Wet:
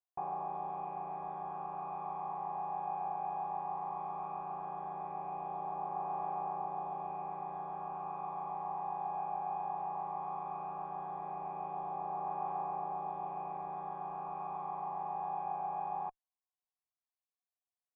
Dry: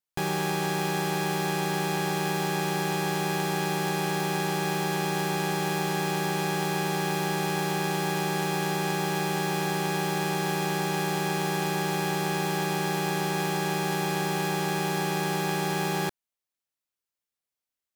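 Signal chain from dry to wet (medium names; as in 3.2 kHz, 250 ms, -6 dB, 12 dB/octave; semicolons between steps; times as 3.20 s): valve stage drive 27 dB, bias 0.45; phaser 0.16 Hz, delay 1.3 ms, feedback 26%; cascade formant filter a; trim +5 dB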